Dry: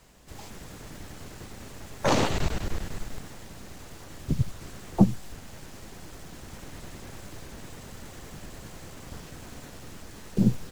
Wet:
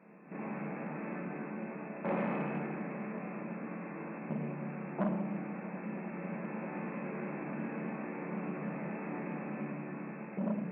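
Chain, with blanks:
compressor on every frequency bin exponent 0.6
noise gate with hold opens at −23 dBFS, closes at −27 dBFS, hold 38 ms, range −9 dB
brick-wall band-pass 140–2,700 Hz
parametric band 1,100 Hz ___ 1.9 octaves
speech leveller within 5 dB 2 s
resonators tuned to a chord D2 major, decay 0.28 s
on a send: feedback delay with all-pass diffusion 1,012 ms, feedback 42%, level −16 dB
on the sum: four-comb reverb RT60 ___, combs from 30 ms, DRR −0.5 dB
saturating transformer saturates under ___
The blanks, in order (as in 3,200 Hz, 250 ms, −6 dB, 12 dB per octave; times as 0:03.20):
−4 dB, 1.5 s, 690 Hz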